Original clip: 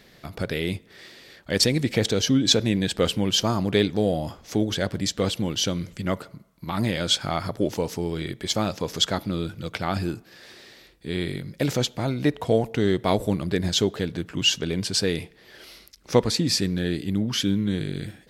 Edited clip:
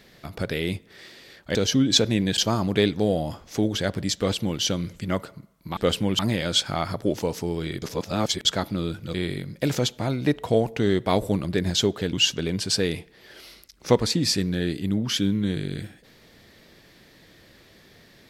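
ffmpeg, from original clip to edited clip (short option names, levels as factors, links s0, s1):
-filter_complex "[0:a]asplit=9[s0][s1][s2][s3][s4][s5][s6][s7][s8];[s0]atrim=end=1.552[s9];[s1]atrim=start=2.098:end=2.932[s10];[s2]atrim=start=3.348:end=6.742[s11];[s3]atrim=start=2.928:end=3.352[s12];[s4]atrim=start=6.738:end=8.372[s13];[s5]atrim=start=8.368:end=9.002,asetpts=PTS-STARTPTS,areverse[s14];[s6]atrim=start=8.998:end=9.692[s15];[s7]atrim=start=11.118:end=14.112[s16];[s8]atrim=start=14.368[s17];[s9][s10]acrossfade=d=0.004:c1=hsin:c2=hsin[s18];[s18][s11]acrossfade=d=0.004:c1=hsin:c2=hsin[s19];[s19][s12]acrossfade=d=0.004:c1=hsin:c2=hsin[s20];[s20][s13]acrossfade=d=0.004:c1=hsin:c2=hsin[s21];[s21][s14]acrossfade=d=0.004:c1=hsin:c2=hsin[s22];[s22][s15]acrossfade=d=0.004:c1=hsin:c2=hsin[s23];[s23][s16]acrossfade=d=0.004:c1=hsin:c2=hsin[s24];[s24][s17]acrossfade=d=0.004:c1=hsin:c2=hsin"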